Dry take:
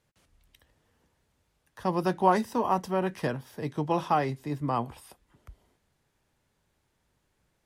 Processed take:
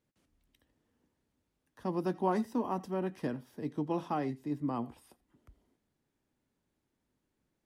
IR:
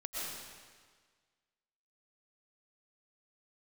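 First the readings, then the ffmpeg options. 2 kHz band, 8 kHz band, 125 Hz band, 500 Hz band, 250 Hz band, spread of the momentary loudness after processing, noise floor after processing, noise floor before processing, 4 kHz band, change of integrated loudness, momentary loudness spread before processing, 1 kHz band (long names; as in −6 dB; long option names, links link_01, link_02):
−11.0 dB, below −10 dB, −7.0 dB, −6.5 dB, −2.5 dB, 8 LU, −83 dBFS, −75 dBFS, −11.0 dB, −6.5 dB, 9 LU, −10.0 dB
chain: -filter_complex "[0:a]equalizer=frequency=270:width_type=o:width=1.1:gain=11.5[link_01];[1:a]atrim=start_sample=2205,atrim=end_sample=3969[link_02];[link_01][link_02]afir=irnorm=-1:irlink=0,volume=-6.5dB"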